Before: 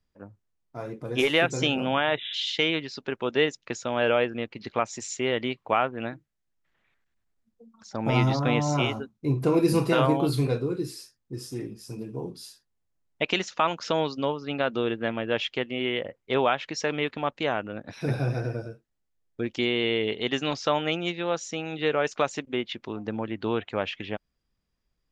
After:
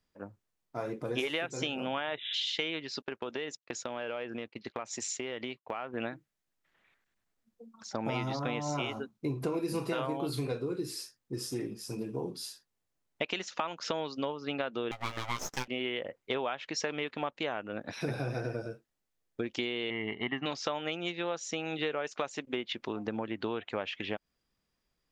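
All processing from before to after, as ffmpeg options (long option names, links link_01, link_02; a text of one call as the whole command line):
ffmpeg -i in.wav -filter_complex "[0:a]asettb=1/sr,asplit=3[link_01][link_02][link_03];[link_01]atrim=end=3.024[link_04];[link_02]atrim=start=3.02:end=5.94,asetpts=PTS-STARTPTS,afade=type=in:duration=0.004:curve=qsin,afade=type=out:start_time=2.916:duration=0.004:curve=qsin,agate=range=-33dB:threshold=-37dB:ratio=3:release=100:detection=peak,highpass=44,acompressor=threshold=-34dB:ratio=6:attack=3.2:release=140:knee=1:detection=peak[link_05];[link_03]atrim=start=5.936[link_06];[link_04][link_05]acrossfade=duration=0.004:curve1=hsin:curve2=qsin[link_07];[link_07][link_06]acrossfade=duration=0.004:curve1=qsin:curve2=hsin,asettb=1/sr,asplit=3[link_08][link_09][link_10];[link_08]atrim=end=14.914[link_11];[link_09]atrim=start=14.91:end=15.68,asetpts=PTS-STARTPTS,afade=type=in:duration=0.004:curve=qsin,afade=type=out:start_time=0.766:duration=0.004:curve=qsin,highpass=360,aeval=exprs='abs(val(0))':channel_layout=same,asplit=2[link_12][link_13];[link_13]adelay=16,volume=-6dB[link_14];[link_12][link_14]amix=inputs=2:normalize=0,atrim=end_sample=33957[link_15];[link_10]atrim=start=15.676[link_16];[link_11][link_15]acrossfade=duration=0.004:curve1=hsin:curve2=qsin[link_17];[link_17][link_16]acrossfade=duration=0.004:curve1=qsin:curve2=hsin,asettb=1/sr,asplit=3[link_18][link_19][link_20];[link_18]atrim=end=19.904[link_21];[link_19]atrim=start=19.9:end=20.46,asetpts=PTS-STARTPTS,afade=type=in:duration=0.004:curve=qsin,afade=type=out:start_time=0.556:duration=0.004:curve=qsin,agate=range=-33dB:threshold=-36dB:ratio=3:release=100:detection=peak,lowpass=frequency=2300:width=0.5412,lowpass=frequency=2300:width=1.3066,aecho=1:1:1:0.75,atrim=end_sample=24696[link_22];[link_20]atrim=start=20.456[link_23];[link_21][link_22]acrossfade=duration=0.004:curve1=hsin:curve2=qsin[link_24];[link_24][link_23]acrossfade=duration=0.004:curve1=qsin:curve2=hsin,lowshelf=frequency=140:gain=-10.5,acompressor=threshold=-33dB:ratio=6,volume=2.5dB" out.wav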